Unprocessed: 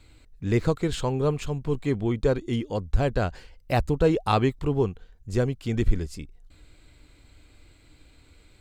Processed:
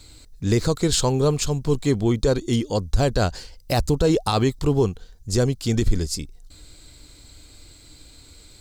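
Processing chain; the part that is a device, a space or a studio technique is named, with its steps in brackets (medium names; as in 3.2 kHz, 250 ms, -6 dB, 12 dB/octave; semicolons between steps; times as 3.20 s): over-bright horn tweeter (resonant high shelf 3.5 kHz +9.5 dB, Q 1.5; peak limiter -14.5 dBFS, peak gain reduction 7.5 dB); trim +5.5 dB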